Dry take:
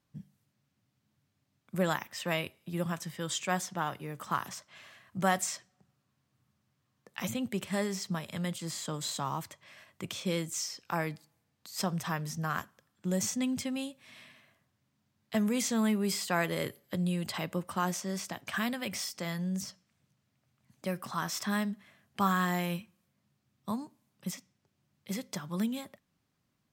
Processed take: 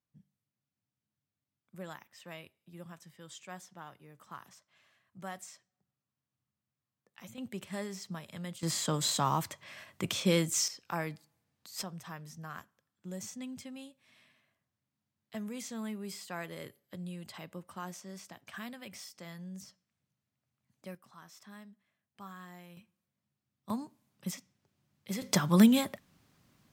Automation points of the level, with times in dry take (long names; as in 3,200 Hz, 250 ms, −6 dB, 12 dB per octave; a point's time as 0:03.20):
−15 dB
from 0:07.38 −7 dB
from 0:08.63 +5 dB
from 0:10.68 −3 dB
from 0:11.83 −11 dB
from 0:20.95 −20 dB
from 0:22.77 −11 dB
from 0:23.70 −0.5 dB
from 0:25.22 +11 dB